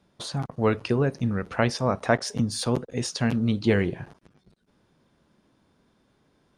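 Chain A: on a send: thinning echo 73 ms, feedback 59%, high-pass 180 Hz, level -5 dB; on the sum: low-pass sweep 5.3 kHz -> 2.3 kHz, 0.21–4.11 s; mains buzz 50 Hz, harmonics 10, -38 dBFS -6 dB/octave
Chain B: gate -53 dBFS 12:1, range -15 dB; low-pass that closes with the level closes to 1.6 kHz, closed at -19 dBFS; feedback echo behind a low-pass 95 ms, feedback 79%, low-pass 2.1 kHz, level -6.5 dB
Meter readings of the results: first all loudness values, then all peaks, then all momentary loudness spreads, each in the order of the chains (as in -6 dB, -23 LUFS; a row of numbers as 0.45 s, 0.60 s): -24.5 LUFS, -25.0 LUFS; -5.0 dBFS, -6.0 dBFS; 19 LU, 12 LU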